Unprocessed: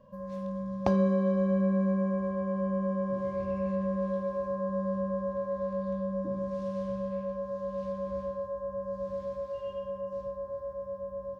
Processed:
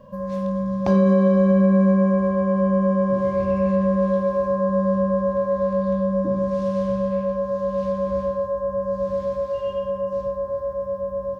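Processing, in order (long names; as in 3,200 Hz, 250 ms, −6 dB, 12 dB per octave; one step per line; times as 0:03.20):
boost into a limiter +19 dB
level −8 dB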